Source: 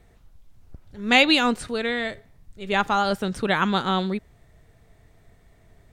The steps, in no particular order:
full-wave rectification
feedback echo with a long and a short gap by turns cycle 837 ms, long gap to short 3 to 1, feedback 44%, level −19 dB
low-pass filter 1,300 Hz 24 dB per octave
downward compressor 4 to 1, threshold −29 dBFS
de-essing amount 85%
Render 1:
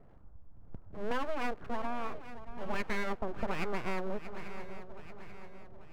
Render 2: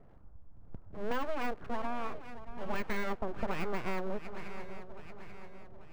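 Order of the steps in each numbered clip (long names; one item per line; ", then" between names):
low-pass filter, then de-essing, then full-wave rectification, then feedback echo with a long and a short gap by turns, then downward compressor
low-pass filter, then full-wave rectification, then feedback echo with a long and a short gap by turns, then de-essing, then downward compressor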